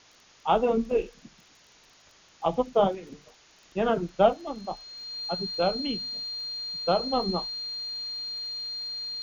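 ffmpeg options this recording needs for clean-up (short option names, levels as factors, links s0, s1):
-af "adeclick=t=4,bandreject=f=4200:w=30,afwtdn=0.0022"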